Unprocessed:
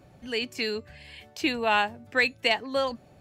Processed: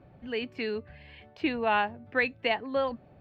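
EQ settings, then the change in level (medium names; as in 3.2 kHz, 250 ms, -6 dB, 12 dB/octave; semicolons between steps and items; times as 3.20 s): distance through air 390 m; 0.0 dB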